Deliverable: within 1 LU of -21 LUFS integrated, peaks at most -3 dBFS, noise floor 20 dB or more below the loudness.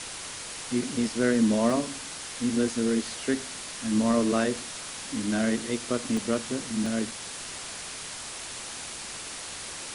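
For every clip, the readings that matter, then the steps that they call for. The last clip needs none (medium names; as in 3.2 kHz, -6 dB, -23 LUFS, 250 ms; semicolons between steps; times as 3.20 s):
dropouts 3; longest dropout 2.5 ms; noise floor -39 dBFS; noise floor target -49 dBFS; loudness -29.0 LUFS; peak level -11.0 dBFS; loudness target -21.0 LUFS
-> interpolate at 1.70/6.17/6.86 s, 2.5 ms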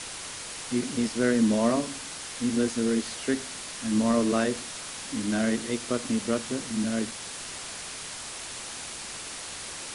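dropouts 0; noise floor -39 dBFS; noise floor target -49 dBFS
-> noise print and reduce 10 dB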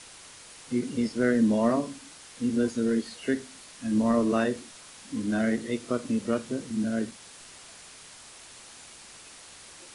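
noise floor -49 dBFS; loudness -28.0 LUFS; peak level -11.5 dBFS; loudness target -21.0 LUFS
-> trim +7 dB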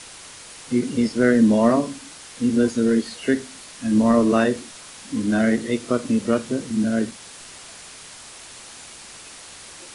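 loudness -21.0 LUFS; peak level -4.5 dBFS; noise floor -42 dBFS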